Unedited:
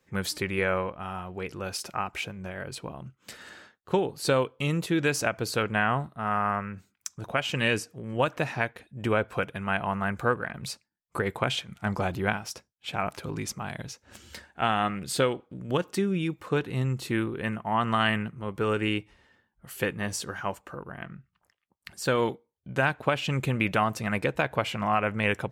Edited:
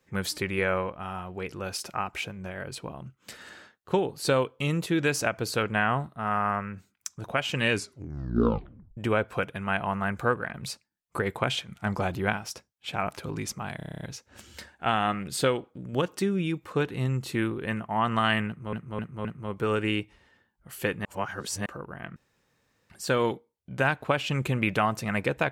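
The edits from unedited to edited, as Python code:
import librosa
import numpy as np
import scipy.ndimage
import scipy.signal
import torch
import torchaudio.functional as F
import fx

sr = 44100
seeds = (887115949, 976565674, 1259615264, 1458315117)

y = fx.edit(x, sr, fx.tape_stop(start_s=7.71, length_s=1.26),
    fx.stutter(start_s=13.77, slice_s=0.03, count=9),
    fx.repeat(start_s=18.23, length_s=0.26, count=4),
    fx.reverse_span(start_s=20.03, length_s=0.61),
    fx.room_tone_fill(start_s=21.14, length_s=0.74), tone=tone)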